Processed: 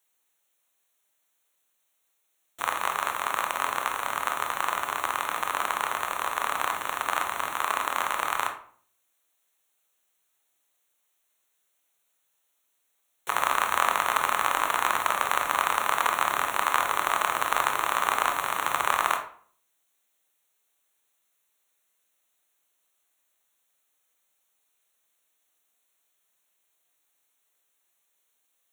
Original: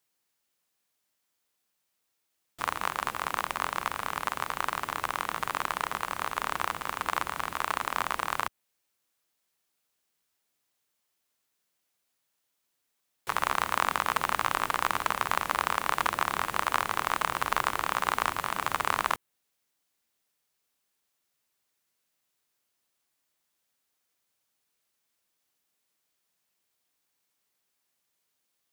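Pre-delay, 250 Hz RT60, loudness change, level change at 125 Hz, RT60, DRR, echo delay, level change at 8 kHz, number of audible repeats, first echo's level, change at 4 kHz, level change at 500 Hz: 20 ms, 0.60 s, +3.5 dB, no reading, 0.50 s, 4.0 dB, no echo, +5.5 dB, no echo, no echo, +3.0 dB, +3.5 dB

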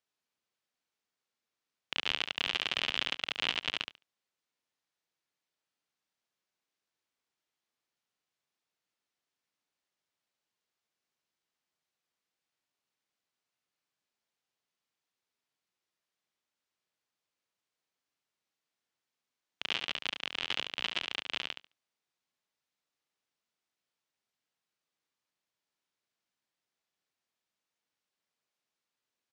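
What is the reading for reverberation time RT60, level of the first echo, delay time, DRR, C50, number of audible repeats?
no reverb, -7.0 dB, 71 ms, no reverb, no reverb, 2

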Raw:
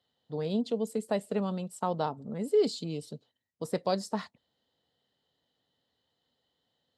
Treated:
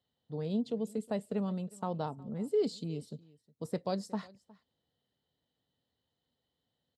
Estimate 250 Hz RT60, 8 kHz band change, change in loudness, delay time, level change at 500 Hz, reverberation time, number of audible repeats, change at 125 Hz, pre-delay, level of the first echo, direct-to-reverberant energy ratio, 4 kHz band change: no reverb, -7.5 dB, -4.0 dB, 362 ms, -5.0 dB, no reverb, 1, -1.0 dB, no reverb, -23.0 dB, no reverb, -7.5 dB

